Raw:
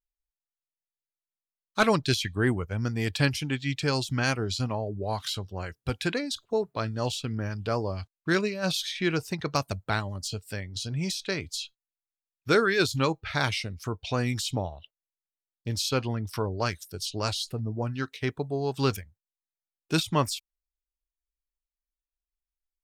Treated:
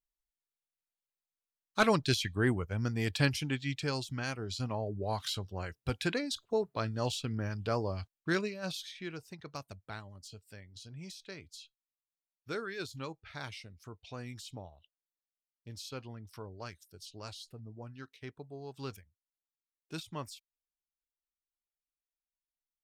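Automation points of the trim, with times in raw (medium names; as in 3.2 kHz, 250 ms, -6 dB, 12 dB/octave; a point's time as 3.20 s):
3.48 s -4 dB
4.31 s -11 dB
4.84 s -4 dB
8.16 s -4 dB
9.15 s -16 dB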